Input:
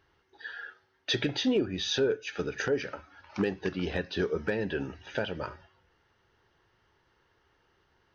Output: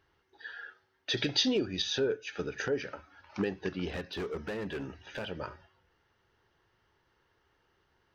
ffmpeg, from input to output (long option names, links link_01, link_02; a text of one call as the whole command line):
ffmpeg -i in.wav -filter_complex "[0:a]asettb=1/sr,asplit=3[link_01][link_02][link_03];[link_01]atrim=end=1.174[link_04];[link_02]atrim=start=1.17:end=1.82,asetpts=PTS-STARTPTS,afade=type=in:duration=0.004:curve=qsin,afade=type=out:start_time=0.646:duration=0.004:curve=qsin,equalizer=frequency=5000:width=1.1:gain=12[link_05];[link_03]atrim=start=1.816[link_06];[link_04][link_05]acrossfade=duration=0.004:curve1=hsin:curve2=qsin[link_07];[link_07][link_06]acrossfade=duration=0.004:curve1=qsin:curve2=hsin,asplit=3[link_08][link_09][link_10];[link_08]afade=type=out:start_time=3.87:duration=0.02[link_11];[link_09]asoftclip=type=hard:threshold=-29.5dB,afade=type=in:start_time=3.87:duration=0.02,afade=type=out:start_time=5.29:duration=0.02[link_12];[link_10]afade=type=in:start_time=5.29:duration=0.02[link_13];[link_11][link_12][link_13]amix=inputs=3:normalize=0,volume=-3dB" out.wav